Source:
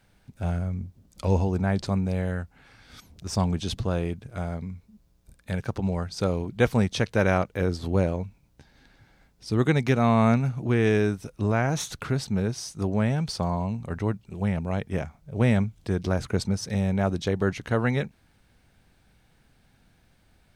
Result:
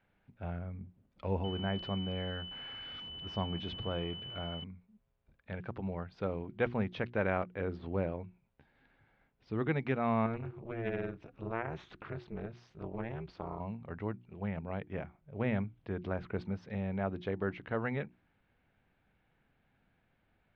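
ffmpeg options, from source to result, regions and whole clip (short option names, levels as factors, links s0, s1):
-filter_complex "[0:a]asettb=1/sr,asplit=3[s0][s1][s2];[s0]atrim=end=1.444[s3];[s1]atrim=start=1.44:end=4.64,asetpts=PTS-STARTPTS,afade=t=in:d=0.004:c=qsin,afade=t=out:st=3.196:d=0.004:c=qsin,aeval=exprs='val(0)+0.5*0.0133*sgn(val(0))':c=same,aeval=exprs='val(0)+0.0282*sin(2*PI*3000*n/s)':c=same[s4];[s2]atrim=start=4.636[s5];[s3][s4]acrossfade=d=0.004:c1=hsin:c2=qsin[s6];[s6][s5]acrossfade=d=0.004:c1=qsin:c2=hsin,asettb=1/sr,asplit=3[s7][s8][s9];[s7]atrim=end=10.264[s10];[s8]atrim=start=10.26:end=13.6,asetpts=PTS-STARTPTS,afade=t=in:d=0.004:c=qsin,afade=t=out:st=3.336:d=0.004:c=qsin,equalizer=f=270:t=o:w=0.33:g=-6,acompressor=mode=upward:threshold=0.0447:ratio=2.5:attack=3.2:release=140:knee=2.83:detection=peak,tremolo=f=230:d=0.974[s11];[s9]atrim=start=13.596[s12];[s10][s11]acrossfade=d=0.004:c1=hsin:c2=qsin[s13];[s13][s12]acrossfade=d=0.004:c1=qsin:c2=hsin,lowpass=f=2900:w=0.5412,lowpass=f=2900:w=1.3066,lowshelf=f=120:g=-7,bandreject=f=60:t=h:w=6,bandreject=f=120:t=h:w=6,bandreject=f=180:t=h:w=6,bandreject=f=240:t=h:w=6,bandreject=f=300:t=h:w=6,bandreject=f=360:t=h:w=6,volume=0.376"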